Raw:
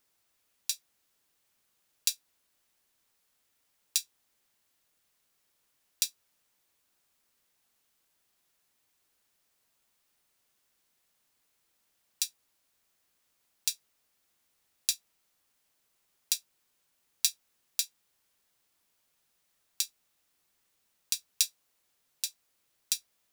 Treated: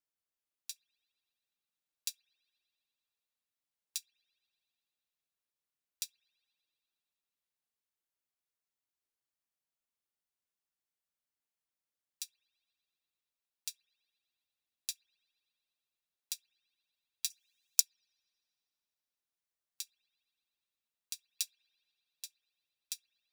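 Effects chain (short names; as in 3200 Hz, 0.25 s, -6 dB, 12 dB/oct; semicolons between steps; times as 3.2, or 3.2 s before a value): 17.3–17.8 resonant high shelf 4500 Hz +9 dB, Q 3; spring tank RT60 3.2 s, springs 58 ms, chirp 75 ms, DRR 13.5 dB; upward expander 1.5:1, over -44 dBFS; gain -6 dB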